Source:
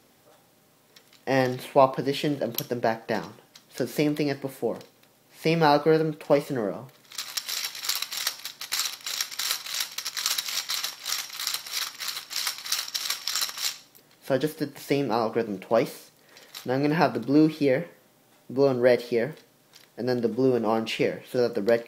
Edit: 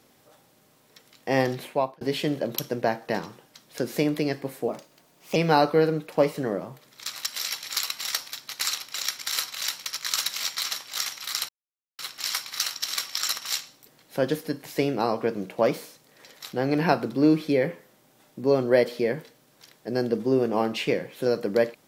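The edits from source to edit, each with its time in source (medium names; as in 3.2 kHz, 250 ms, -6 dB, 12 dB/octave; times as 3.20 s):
1.56–2.01 s: fade out
4.68–5.48 s: speed 118%
11.61–12.11 s: mute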